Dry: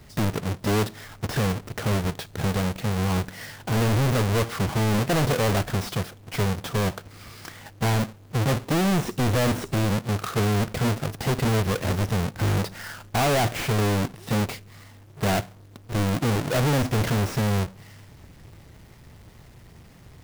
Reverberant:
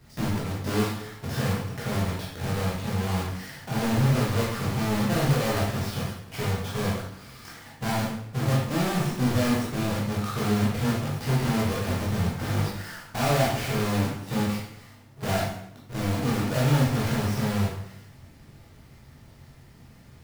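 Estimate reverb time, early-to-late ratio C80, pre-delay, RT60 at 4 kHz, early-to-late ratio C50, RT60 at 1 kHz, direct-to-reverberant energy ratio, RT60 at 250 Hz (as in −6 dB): 0.80 s, 5.0 dB, 11 ms, 0.70 s, 1.5 dB, 0.75 s, −5.5 dB, 0.75 s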